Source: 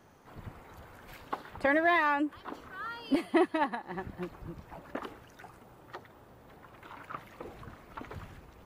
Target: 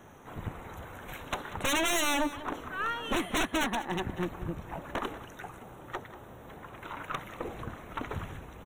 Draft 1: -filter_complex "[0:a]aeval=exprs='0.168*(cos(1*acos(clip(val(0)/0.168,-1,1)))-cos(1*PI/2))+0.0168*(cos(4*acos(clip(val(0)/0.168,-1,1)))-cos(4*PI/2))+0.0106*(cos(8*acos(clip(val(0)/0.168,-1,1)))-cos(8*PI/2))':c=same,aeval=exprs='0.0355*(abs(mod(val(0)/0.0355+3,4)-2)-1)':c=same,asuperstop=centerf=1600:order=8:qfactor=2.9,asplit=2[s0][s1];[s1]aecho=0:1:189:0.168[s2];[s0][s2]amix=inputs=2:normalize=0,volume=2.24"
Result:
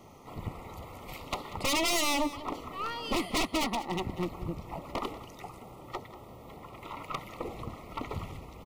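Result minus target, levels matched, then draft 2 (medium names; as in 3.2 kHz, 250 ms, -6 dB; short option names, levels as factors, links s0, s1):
2 kHz band -3.0 dB
-filter_complex "[0:a]aeval=exprs='0.168*(cos(1*acos(clip(val(0)/0.168,-1,1)))-cos(1*PI/2))+0.0168*(cos(4*acos(clip(val(0)/0.168,-1,1)))-cos(4*PI/2))+0.0106*(cos(8*acos(clip(val(0)/0.168,-1,1)))-cos(8*PI/2))':c=same,aeval=exprs='0.0355*(abs(mod(val(0)/0.0355+3,4)-2)-1)':c=same,asuperstop=centerf=4800:order=8:qfactor=2.9,asplit=2[s0][s1];[s1]aecho=0:1:189:0.168[s2];[s0][s2]amix=inputs=2:normalize=0,volume=2.24"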